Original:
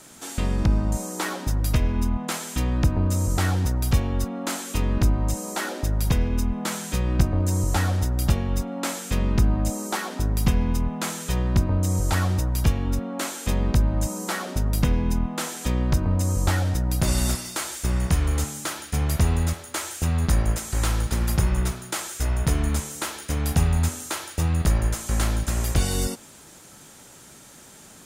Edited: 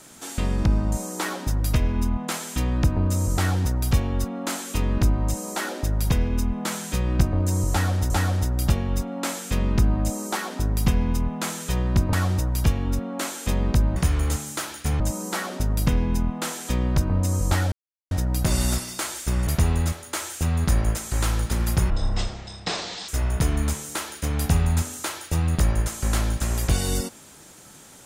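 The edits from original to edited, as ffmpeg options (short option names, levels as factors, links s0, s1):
-filter_complex "[0:a]asplit=9[s0][s1][s2][s3][s4][s5][s6][s7][s8];[s0]atrim=end=8.102[s9];[s1]atrim=start=7.698:end=11.732[s10];[s2]atrim=start=12.128:end=13.962[s11];[s3]atrim=start=18.038:end=19.082[s12];[s4]atrim=start=13.958:end=16.68,asetpts=PTS-STARTPTS,afade=t=out:st=2.718:d=0.004:c=hsin,apad=pad_dur=0.39[s13];[s5]atrim=start=16.68:end=18.042,asetpts=PTS-STARTPTS,afade=t=in:d=0.004:c=hsin[s14];[s6]atrim=start=19.078:end=21.514[s15];[s7]atrim=start=21.51:end=22.15,asetpts=PTS-STARTPTS,asetrate=23814,aresample=44100[s16];[s8]atrim=start=22.146[s17];[s9][s10]acrossfade=d=0.004:c1=hsin:c2=hsin[s18];[s18][s11]acrossfade=d=0.004:c1=hsin:c2=hsin[s19];[s19][s12]acrossfade=d=0.004:c1=hsin:c2=hsin[s20];[s13][s14]concat=n=2:v=0:a=1[s21];[s20][s21]acrossfade=d=0.004:c1=hsin:c2=hsin[s22];[s22][s15]acrossfade=d=0.004:c1=hsin:c2=hsin[s23];[s23][s16]acrossfade=d=0.004:c1=hsin:c2=hsin[s24];[s24][s17]acrossfade=d=0.004:c1=hsin:c2=hsin"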